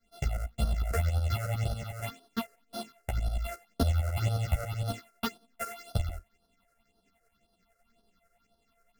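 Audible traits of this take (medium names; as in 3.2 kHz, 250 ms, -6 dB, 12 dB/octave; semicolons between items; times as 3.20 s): a buzz of ramps at a fixed pitch in blocks of 64 samples; phasing stages 6, 1.9 Hz, lowest notch 230–2200 Hz; tremolo saw up 11 Hz, depth 70%; a shimmering, thickened sound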